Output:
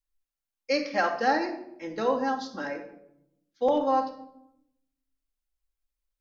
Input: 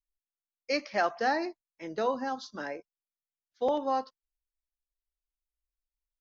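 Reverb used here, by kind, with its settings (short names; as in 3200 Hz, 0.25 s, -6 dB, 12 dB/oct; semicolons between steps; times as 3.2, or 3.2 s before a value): shoebox room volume 2100 m³, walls furnished, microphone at 2.2 m; gain +1 dB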